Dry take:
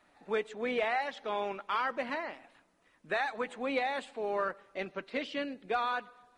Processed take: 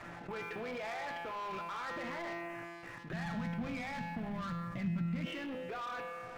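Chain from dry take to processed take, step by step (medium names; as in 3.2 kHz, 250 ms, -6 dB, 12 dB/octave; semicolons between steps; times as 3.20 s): harmonic-percussive split harmonic -4 dB; level held to a coarse grid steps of 24 dB; peak limiter -45 dBFS, peak gain reduction 9 dB; steep low-pass 2.6 kHz; peaking EQ 120 Hz +14.5 dB 0.54 oct; feedback comb 170 Hz, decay 1.3 s, mix 90%; de-hum 51.92 Hz, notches 20; waveshaping leveller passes 3; 3.13–5.26 s: resonant low shelf 280 Hz +12.5 dB, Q 3; level flattener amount 50%; trim +14 dB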